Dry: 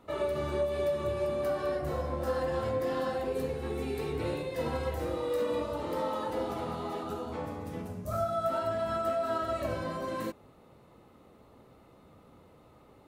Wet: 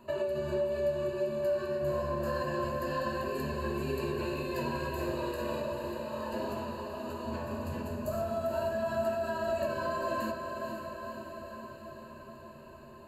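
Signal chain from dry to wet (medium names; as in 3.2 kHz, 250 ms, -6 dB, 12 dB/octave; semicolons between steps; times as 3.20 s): rippled EQ curve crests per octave 1.4, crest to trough 17 dB; compression 3:1, threshold -32 dBFS, peak gain reduction 9.5 dB; 5.31–7.51 s: tremolo triangle 1.1 Hz, depth 75%; echo that smears into a reverb 497 ms, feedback 66%, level -6 dB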